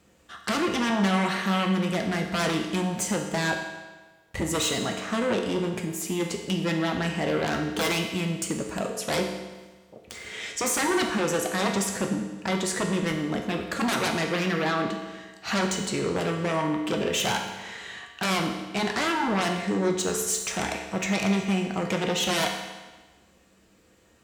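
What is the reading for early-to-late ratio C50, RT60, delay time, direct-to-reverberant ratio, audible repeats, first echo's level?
5.5 dB, 1.3 s, none, 2.0 dB, none, none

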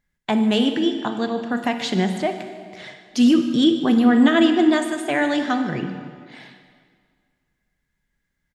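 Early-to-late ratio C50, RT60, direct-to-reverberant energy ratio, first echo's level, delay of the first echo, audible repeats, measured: 7.5 dB, 2.0 s, 7.0 dB, -17.5 dB, 0.149 s, 1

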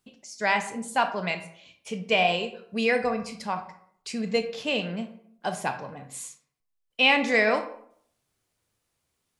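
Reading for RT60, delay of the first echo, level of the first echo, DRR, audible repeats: 0.65 s, none, none, 7.0 dB, none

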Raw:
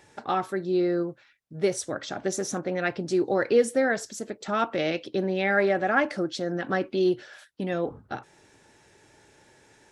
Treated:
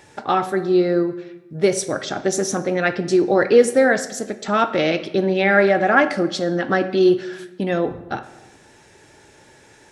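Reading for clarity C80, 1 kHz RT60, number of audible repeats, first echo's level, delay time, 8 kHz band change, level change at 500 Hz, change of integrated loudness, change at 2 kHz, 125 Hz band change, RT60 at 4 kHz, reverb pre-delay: 15.5 dB, 1.0 s, none, none, none, +7.5 dB, +8.0 dB, +8.0 dB, +8.0 dB, +7.5 dB, 0.70 s, 15 ms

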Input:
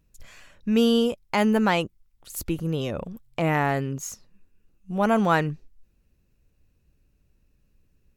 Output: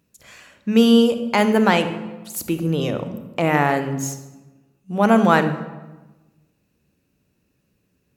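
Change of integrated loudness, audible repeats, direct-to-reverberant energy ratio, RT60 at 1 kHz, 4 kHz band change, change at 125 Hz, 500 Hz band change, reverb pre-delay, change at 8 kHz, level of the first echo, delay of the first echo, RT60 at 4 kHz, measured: +5.5 dB, none, 9.0 dB, 1.1 s, +5.5 dB, +4.0 dB, +5.5 dB, 30 ms, +5.5 dB, none, none, 0.80 s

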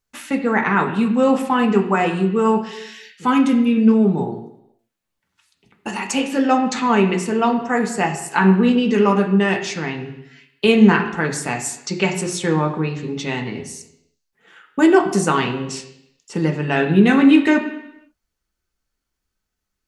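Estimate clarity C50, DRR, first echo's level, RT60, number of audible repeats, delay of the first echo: 9.0 dB, 1.5 dB, none, 0.85 s, none, none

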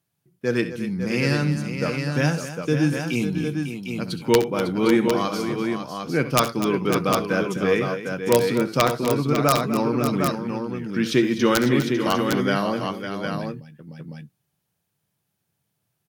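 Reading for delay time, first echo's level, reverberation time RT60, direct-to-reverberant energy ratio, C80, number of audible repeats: 66 ms, -13.5 dB, none, none, none, 4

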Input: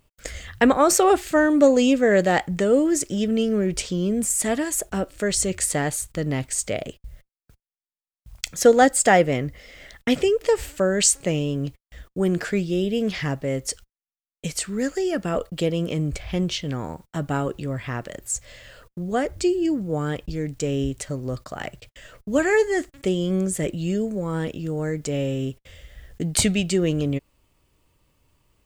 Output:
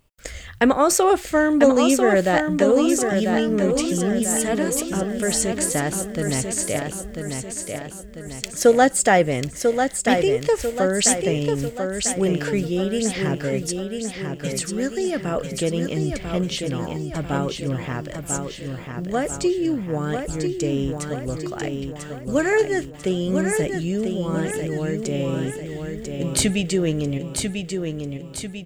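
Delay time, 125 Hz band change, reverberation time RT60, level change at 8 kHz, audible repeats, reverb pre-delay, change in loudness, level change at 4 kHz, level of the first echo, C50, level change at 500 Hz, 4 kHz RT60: 0.994 s, +1.5 dB, none, +1.5 dB, 5, none, +0.5 dB, +1.5 dB, -5.5 dB, none, +1.5 dB, none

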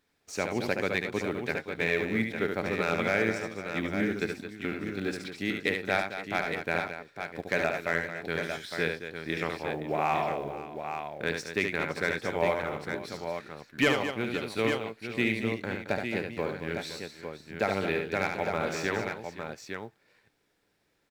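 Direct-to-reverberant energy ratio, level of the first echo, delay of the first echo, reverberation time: none, -5.5 dB, 72 ms, none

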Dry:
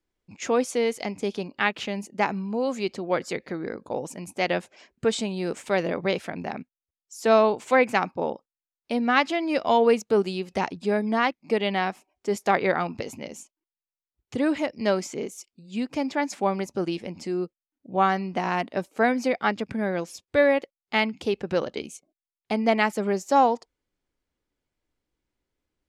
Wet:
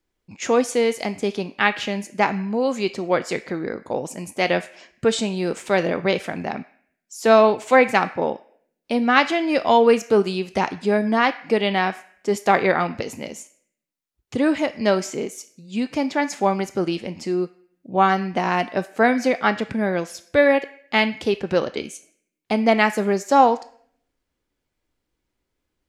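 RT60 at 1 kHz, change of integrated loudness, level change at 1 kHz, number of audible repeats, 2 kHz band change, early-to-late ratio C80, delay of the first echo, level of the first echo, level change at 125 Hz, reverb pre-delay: 0.55 s, +4.5 dB, +4.5 dB, none, +5.0 dB, 18.0 dB, none, none, +4.5 dB, 7 ms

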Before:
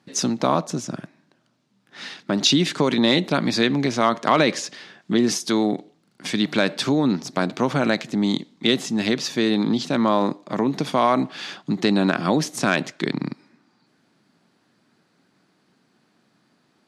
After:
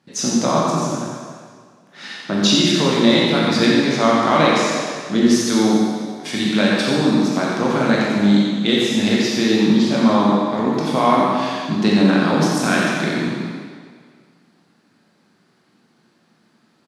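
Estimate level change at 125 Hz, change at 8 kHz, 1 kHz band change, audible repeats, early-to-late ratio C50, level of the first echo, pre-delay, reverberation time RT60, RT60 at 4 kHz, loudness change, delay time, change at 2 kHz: +5.0 dB, +4.0 dB, +4.5 dB, 1, -2.5 dB, -5.0 dB, 16 ms, 1.9 s, 1.7 s, +4.5 dB, 88 ms, +4.5 dB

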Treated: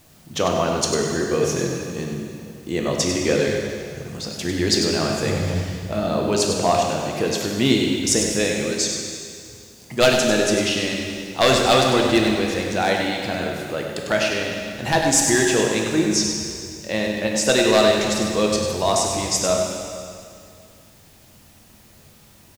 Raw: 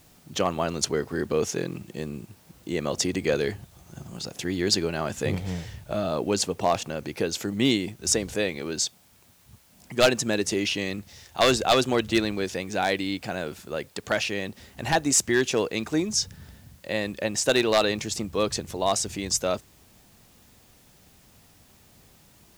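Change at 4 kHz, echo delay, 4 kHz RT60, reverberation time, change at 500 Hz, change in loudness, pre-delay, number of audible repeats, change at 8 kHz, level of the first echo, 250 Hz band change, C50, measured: +5.5 dB, 98 ms, 2.2 s, 2.3 s, +6.0 dB, +5.5 dB, 6 ms, 1, +5.5 dB, -7.5 dB, +6.0 dB, 1.0 dB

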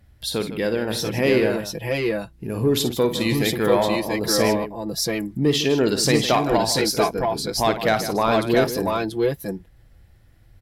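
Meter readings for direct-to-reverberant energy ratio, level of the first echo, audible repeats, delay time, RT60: none, -10.5 dB, 3, 54 ms, none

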